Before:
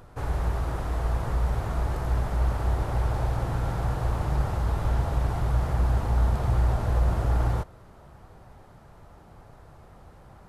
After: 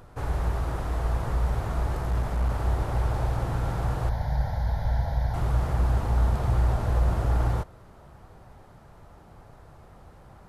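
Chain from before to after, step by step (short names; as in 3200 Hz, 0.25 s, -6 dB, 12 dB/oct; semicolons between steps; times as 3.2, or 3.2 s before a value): 2.02–2.5 one-sided clip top -22.5 dBFS, bottom -17.5 dBFS; 4.09–5.34 fixed phaser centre 1800 Hz, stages 8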